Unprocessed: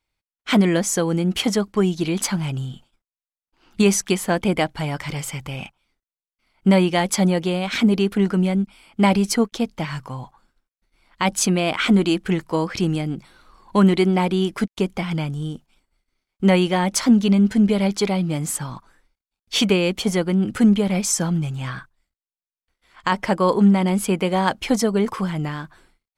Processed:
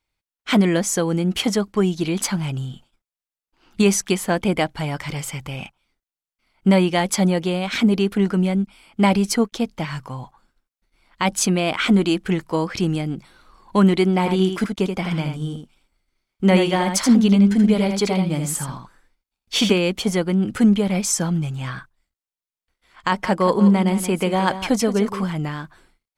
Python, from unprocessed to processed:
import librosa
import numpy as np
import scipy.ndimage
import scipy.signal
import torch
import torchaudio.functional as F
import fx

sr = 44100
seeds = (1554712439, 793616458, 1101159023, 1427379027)

y = fx.echo_single(x, sr, ms=80, db=-6.0, at=(14.18, 19.78))
y = fx.echo_single(y, sr, ms=174, db=-11.5, at=(23.22, 25.32), fade=0.02)